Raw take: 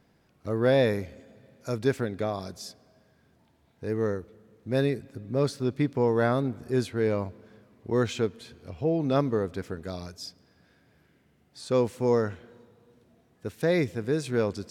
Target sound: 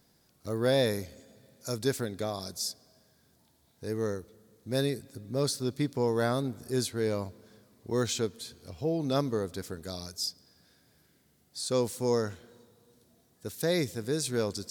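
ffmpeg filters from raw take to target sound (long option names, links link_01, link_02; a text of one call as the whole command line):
ffmpeg -i in.wav -af "aexciter=amount=2.7:drive=8.3:freq=3700,volume=-4dB" out.wav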